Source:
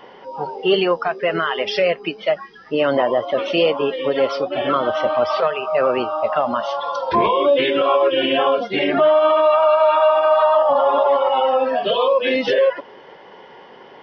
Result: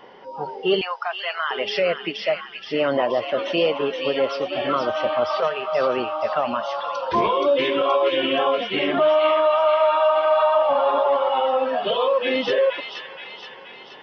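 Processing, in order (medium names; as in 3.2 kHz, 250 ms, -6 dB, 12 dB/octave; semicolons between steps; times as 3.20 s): 0.81–1.51 s: steep high-pass 700 Hz 36 dB/octave; feedback echo behind a high-pass 475 ms, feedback 55%, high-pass 1.9 kHz, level -4 dB; trim -3.5 dB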